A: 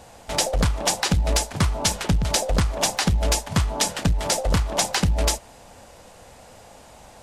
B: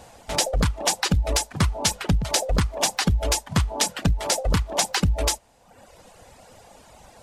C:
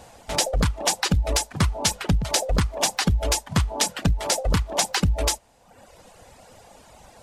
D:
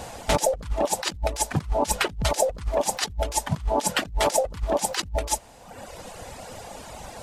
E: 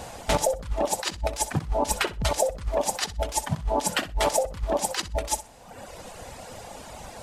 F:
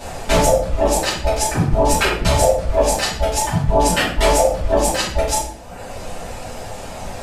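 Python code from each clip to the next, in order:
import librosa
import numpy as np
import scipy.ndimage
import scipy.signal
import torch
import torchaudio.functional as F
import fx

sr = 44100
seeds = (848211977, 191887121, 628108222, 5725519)

y1 = fx.dereverb_blind(x, sr, rt60_s=0.94)
y2 = y1
y3 = fx.over_compress(y2, sr, threshold_db=-28.0, ratio=-0.5)
y3 = y3 * librosa.db_to_amplitude(3.5)
y4 = fx.echo_feedback(y3, sr, ms=63, feedback_pct=16, wet_db=-15.0)
y4 = y4 * librosa.db_to_amplitude(-1.5)
y5 = fx.room_shoebox(y4, sr, seeds[0], volume_m3=88.0, walls='mixed', distance_m=2.6)
y5 = y5 * librosa.db_to_amplitude(-1.5)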